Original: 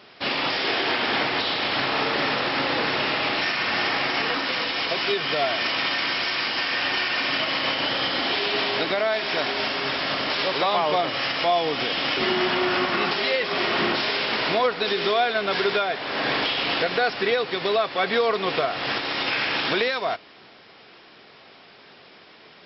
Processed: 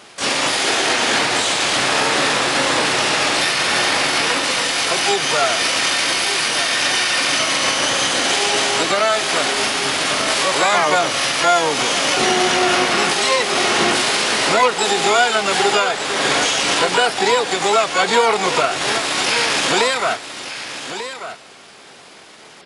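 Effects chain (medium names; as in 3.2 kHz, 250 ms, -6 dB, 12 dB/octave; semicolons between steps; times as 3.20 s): harmony voices +12 st -2 dB; delay 1191 ms -11 dB; trim +4.5 dB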